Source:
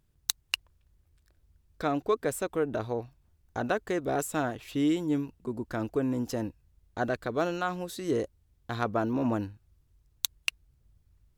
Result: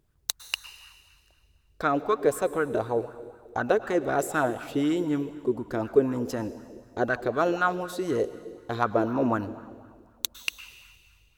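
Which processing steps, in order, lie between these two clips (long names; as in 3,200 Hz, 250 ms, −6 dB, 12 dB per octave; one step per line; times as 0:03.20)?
dense smooth reverb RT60 1.9 s, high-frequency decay 0.95×, pre-delay 95 ms, DRR 13 dB
auto-filter bell 4 Hz 370–1,500 Hz +11 dB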